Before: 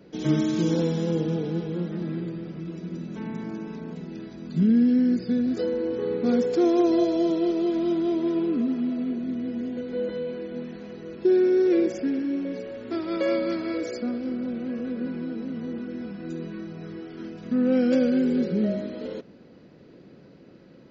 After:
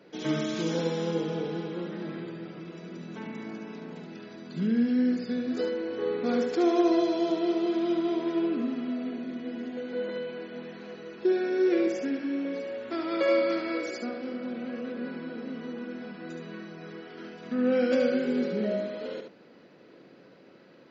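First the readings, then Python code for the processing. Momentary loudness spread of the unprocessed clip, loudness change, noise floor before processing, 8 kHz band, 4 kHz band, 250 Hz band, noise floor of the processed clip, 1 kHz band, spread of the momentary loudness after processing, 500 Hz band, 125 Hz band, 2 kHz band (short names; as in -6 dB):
15 LU, -3.5 dB, -50 dBFS, n/a, +1.0 dB, -5.0 dB, -54 dBFS, +1.5 dB, 17 LU, -2.5 dB, -8.5 dB, +3.0 dB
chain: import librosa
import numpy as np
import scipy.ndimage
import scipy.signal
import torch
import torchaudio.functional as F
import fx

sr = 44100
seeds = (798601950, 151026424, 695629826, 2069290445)

y = fx.highpass(x, sr, hz=770.0, slope=6)
y = fx.high_shelf(y, sr, hz=5100.0, db=-9.5)
y = y + 10.0 ** (-6.0 / 20.0) * np.pad(y, (int(72 * sr / 1000.0), 0))[:len(y)]
y = F.gain(torch.from_numpy(y), 3.5).numpy()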